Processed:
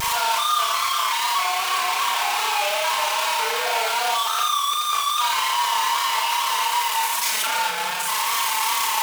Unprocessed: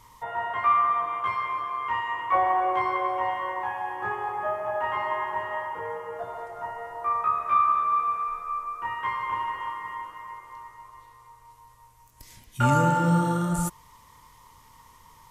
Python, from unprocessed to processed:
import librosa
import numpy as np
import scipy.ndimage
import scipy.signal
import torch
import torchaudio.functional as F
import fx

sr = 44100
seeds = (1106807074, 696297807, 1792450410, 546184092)

p1 = np.sign(x) * np.sqrt(np.mean(np.square(x)))
p2 = scipy.signal.sosfilt(scipy.signal.butter(2, 770.0, 'highpass', fs=sr, output='sos'), p1)
p3 = fx.peak_eq(p2, sr, hz=2300.0, db=4.5, octaves=1.6)
p4 = fx.notch(p3, sr, hz=1900.0, q=8.9)
p5 = p4 + 0.89 * np.pad(p4, (int(4.5 * sr / 1000.0), 0))[:len(p4)]
p6 = np.clip(10.0 ** (20.5 / 20.0) * p5, -1.0, 1.0) / 10.0 ** (20.5 / 20.0)
p7 = p5 + (p6 * 10.0 ** (-7.0 / 20.0))
p8 = fx.vibrato(p7, sr, rate_hz=1.5, depth_cents=54.0)
p9 = fx.stretch_grains(p8, sr, factor=0.59, grain_ms=57.0)
y = p9 + fx.room_flutter(p9, sr, wall_m=6.6, rt60_s=0.48, dry=0)